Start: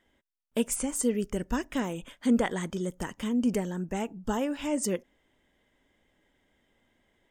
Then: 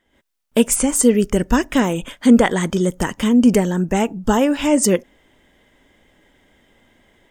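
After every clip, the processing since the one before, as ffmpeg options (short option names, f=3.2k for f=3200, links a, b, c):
-af "dynaudnorm=f=100:g=3:m=12dB,volume=2dB"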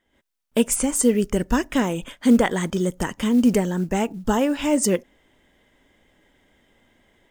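-af "acrusher=bits=8:mode=log:mix=0:aa=0.000001,volume=-4.5dB"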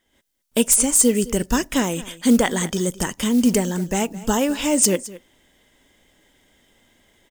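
-filter_complex "[0:a]acrossover=split=3700[a][b];[b]aeval=exprs='0.376*sin(PI/2*2*val(0)/0.376)':c=same[c];[a][c]amix=inputs=2:normalize=0,aecho=1:1:213:0.119"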